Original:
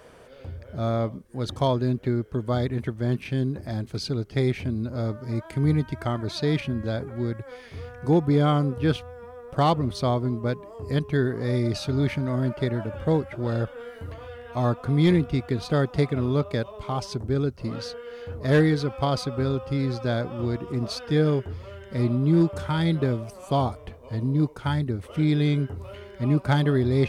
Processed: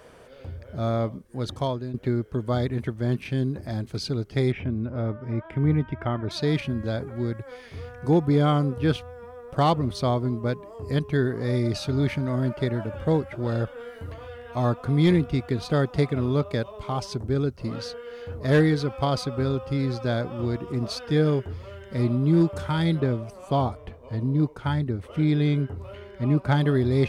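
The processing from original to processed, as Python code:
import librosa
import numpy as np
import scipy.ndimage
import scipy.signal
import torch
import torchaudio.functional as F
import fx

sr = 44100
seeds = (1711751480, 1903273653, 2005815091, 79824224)

y = fx.savgol(x, sr, points=25, at=(4.52, 6.31))
y = fx.high_shelf(y, sr, hz=4700.0, db=-7.5, at=(23.0, 26.61))
y = fx.edit(y, sr, fx.fade_out_to(start_s=1.39, length_s=0.55, floor_db=-12.0), tone=tone)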